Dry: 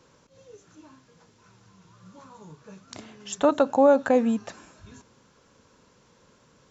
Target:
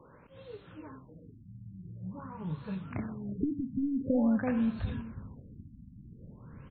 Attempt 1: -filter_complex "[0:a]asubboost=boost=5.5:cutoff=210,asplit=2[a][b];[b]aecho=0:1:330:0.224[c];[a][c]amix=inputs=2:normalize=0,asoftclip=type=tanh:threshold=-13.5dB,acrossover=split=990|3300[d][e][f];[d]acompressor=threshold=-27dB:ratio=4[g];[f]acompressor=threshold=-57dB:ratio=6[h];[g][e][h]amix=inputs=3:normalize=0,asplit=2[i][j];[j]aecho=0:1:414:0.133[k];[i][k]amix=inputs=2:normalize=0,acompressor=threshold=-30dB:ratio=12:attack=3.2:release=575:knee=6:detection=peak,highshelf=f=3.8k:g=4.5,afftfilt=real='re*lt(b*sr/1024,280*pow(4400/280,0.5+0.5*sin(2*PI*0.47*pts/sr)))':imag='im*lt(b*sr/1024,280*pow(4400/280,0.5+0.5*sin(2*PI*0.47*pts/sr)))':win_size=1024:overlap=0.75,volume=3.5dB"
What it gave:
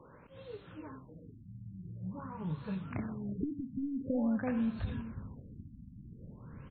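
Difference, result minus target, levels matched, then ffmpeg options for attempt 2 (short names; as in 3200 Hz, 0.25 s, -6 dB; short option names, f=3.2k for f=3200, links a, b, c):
compressor: peak gain reduction +5.5 dB
-filter_complex "[0:a]asubboost=boost=5.5:cutoff=210,asplit=2[a][b];[b]aecho=0:1:330:0.224[c];[a][c]amix=inputs=2:normalize=0,asoftclip=type=tanh:threshold=-13.5dB,acrossover=split=990|3300[d][e][f];[d]acompressor=threshold=-27dB:ratio=4[g];[f]acompressor=threshold=-57dB:ratio=6[h];[g][e][h]amix=inputs=3:normalize=0,asplit=2[i][j];[j]aecho=0:1:414:0.133[k];[i][k]amix=inputs=2:normalize=0,acompressor=threshold=-23.5dB:ratio=12:attack=3.2:release=575:knee=6:detection=peak,highshelf=f=3.8k:g=4.5,afftfilt=real='re*lt(b*sr/1024,280*pow(4400/280,0.5+0.5*sin(2*PI*0.47*pts/sr)))':imag='im*lt(b*sr/1024,280*pow(4400/280,0.5+0.5*sin(2*PI*0.47*pts/sr)))':win_size=1024:overlap=0.75,volume=3.5dB"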